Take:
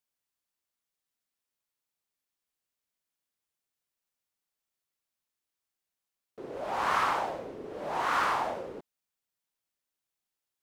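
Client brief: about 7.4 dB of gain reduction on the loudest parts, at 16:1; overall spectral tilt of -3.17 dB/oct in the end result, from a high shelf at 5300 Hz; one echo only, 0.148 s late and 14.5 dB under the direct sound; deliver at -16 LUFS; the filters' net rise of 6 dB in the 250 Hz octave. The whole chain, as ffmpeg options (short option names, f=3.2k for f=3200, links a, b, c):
-af "equalizer=f=250:t=o:g=8,highshelf=f=5.3k:g=-6.5,acompressor=threshold=-30dB:ratio=16,aecho=1:1:148:0.188,volume=20dB"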